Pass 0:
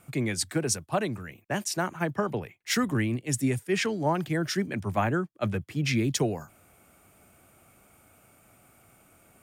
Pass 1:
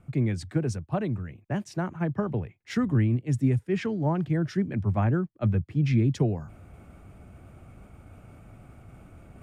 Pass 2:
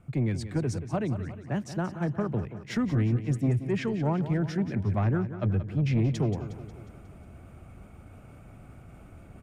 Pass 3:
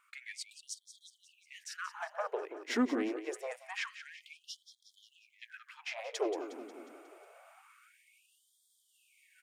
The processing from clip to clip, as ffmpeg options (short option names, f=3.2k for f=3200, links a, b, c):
-af "aemphasis=mode=reproduction:type=riaa,areverse,acompressor=mode=upward:threshold=-33dB:ratio=2.5,areverse,volume=-5dB"
-filter_complex "[0:a]asoftclip=type=tanh:threshold=-19dB,asplit=2[a][b];[b]aecho=0:1:180|360|540|720|900|1080:0.251|0.138|0.076|0.0418|0.023|0.0126[c];[a][c]amix=inputs=2:normalize=0"
-af "aeval=exprs='0.15*(cos(1*acos(clip(val(0)/0.15,-1,1)))-cos(1*PI/2))+0.0299*(cos(2*acos(clip(val(0)/0.15,-1,1)))-cos(2*PI/2))':c=same,afftfilt=real='re*gte(b*sr/1024,240*pow(3200/240,0.5+0.5*sin(2*PI*0.26*pts/sr)))':imag='im*gte(b*sr/1024,240*pow(3200/240,0.5+0.5*sin(2*PI*0.26*pts/sr)))':win_size=1024:overlap=0.75,volume=1dB"